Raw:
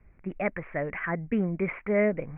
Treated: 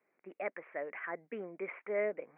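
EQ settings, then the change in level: ladder high-pass 300 Hz, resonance 20%; -4.0 dB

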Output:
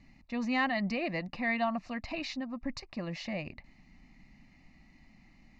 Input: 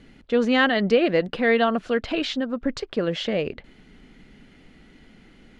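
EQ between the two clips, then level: fixed phaser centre 2200 Hz, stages 8; -6.0 dB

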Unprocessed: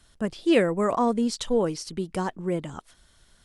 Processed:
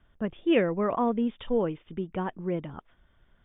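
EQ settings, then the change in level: dynamic EQ 2800 Hz, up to +6 dB, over -48 dBFS, Q 1.7; brick-wall FIR low-pass 3700 Hz; air absorption 410 m; -2.0 dB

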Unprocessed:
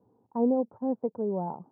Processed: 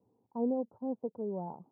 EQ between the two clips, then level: LPF 1100 Hz 12 dB/oct; -6.5 dB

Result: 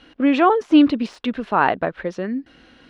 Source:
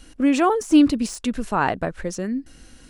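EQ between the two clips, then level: HPF 400 Hz 6 dB/oct; air absorption 340 m; bell 3500 Hz +4.5 dB 0.62 oct; +6.5 dB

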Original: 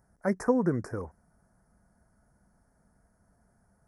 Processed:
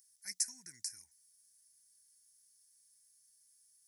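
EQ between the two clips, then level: inverse Chebyshev high-pass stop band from 1300 Hz, stop band 50 dB; +14.0 dB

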